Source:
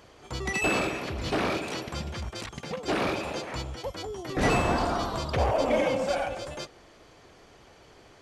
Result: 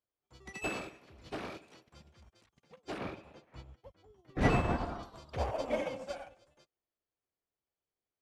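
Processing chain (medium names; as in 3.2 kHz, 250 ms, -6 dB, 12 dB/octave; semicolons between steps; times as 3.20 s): 2.98–5.03 s: tone controls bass +5 dB, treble -9 dB; upward expansion 2.5:1, over -46 dBFS; trim -3 dB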